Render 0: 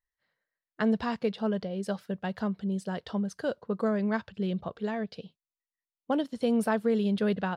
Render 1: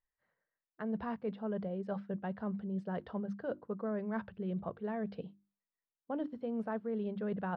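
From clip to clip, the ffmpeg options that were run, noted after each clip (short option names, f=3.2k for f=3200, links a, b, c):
-af "lowpass=1.6k,bandreject=f=50:t=h:w=6,bandreject=f=100:t=h:w=6,bandreject=f=150:t=h:w=6,bandreject=f=200:t=h:w=6,bandreject=f=250:t=h:w=6,bandreject=f=300:t=h:w=6,bandreject=f=350:t=h:w=6,areverse,acompressor=threshold=-36dB:ratio=5,areverse,volume=1dB"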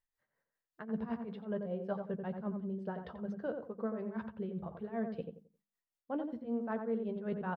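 -filter_complex "[0:a]tremolo=f=5.2:d=0.83,asplit=2[a][b];[b]adelay=13,volume=-11dB[c];[a][c]amix=inputs=2:normalize=0,asplit=2[d][e];[e]adelay=88,lowpass=f=1.2k:p=1,volume=-5dB,asplit=2[f][g];[g]adelay=88,lowpass=f=1.2k:p=1,volume=0.28,asplit=2[h][i];[i]adelay=88,lowpass=f=1.2k:p=1,volume=0.28,asplit=2[j][k];[k]adelay=88,lowpass=f=1.2k:p=1,volume=0.28[l];[f][h][j][l]amix=inputs=4:normalize=0[m];[d][m]amix=inputs=2:normalize=0,volume=1.5dB"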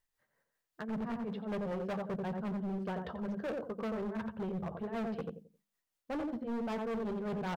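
-af "asoftclip=type=hard:threshold=-39.5dB,volume=5.5dB"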